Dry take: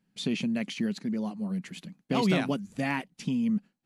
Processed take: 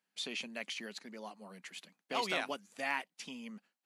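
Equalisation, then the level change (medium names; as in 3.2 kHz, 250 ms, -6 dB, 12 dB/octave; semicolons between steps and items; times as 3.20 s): high-pass 650 Hz 12 dB/octave; -2.5 dB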